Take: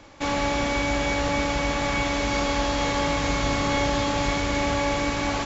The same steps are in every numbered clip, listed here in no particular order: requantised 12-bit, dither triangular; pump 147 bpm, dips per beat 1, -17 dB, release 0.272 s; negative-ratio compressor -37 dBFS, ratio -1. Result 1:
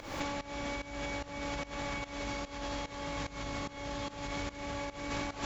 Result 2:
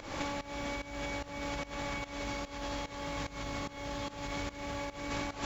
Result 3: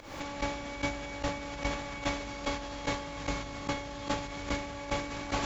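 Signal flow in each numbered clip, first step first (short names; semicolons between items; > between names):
requantised > negative-ratio compressor > pump; negative-ratio compressor > requantised > pump; requantised > pump > negative-ratio compressor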